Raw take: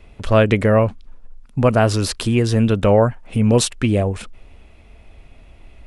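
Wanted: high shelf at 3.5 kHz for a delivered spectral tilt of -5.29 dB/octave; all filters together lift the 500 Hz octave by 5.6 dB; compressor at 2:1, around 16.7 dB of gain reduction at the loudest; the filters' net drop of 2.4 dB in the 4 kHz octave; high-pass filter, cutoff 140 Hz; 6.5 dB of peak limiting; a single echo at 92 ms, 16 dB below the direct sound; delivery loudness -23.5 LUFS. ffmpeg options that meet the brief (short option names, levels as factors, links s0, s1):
-af "highpass=140,equalizer=f=500:t=o:g=6.5,highshelf=f=3500:g=6,equalizer=f=4000:t=o:g=-7.5,acompressor=threshold=0.0141:ratio=2,alimiter=limit=0.106:level=0:latency=1,aecho=1:1:92:0.158,volume=2.51"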